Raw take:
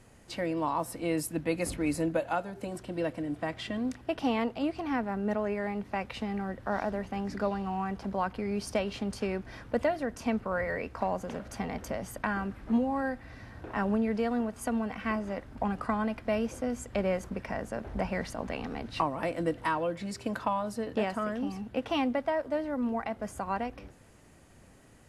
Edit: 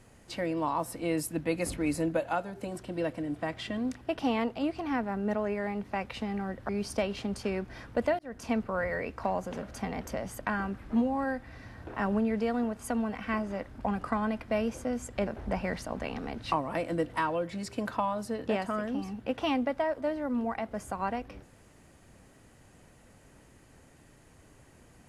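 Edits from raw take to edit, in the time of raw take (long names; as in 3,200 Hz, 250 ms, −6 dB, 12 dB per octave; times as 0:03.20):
0:06.69–0:08.46: remove
0:09.96–0:10.22: fade in
0:17.04–0:17.75: remove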